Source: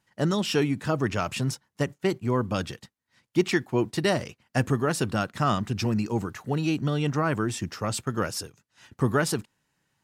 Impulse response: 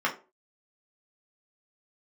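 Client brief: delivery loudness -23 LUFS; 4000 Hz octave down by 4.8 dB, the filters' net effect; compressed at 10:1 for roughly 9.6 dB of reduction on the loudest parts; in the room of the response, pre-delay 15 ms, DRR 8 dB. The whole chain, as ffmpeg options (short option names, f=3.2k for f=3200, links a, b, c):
-filter_complex "[0:a]equalizer=f=4k:t=o:g=-7,acompressor=threshold=-27dB:ratio=10,asplit=2[a][b];[1:a]atrim=start_sample=2205,adelay=15[c];[b][c]afir=irnorm=-1:irlink=0,volume=-20dB[d];[a][d]amix=inputs=2:normalize=0,volume=10dB"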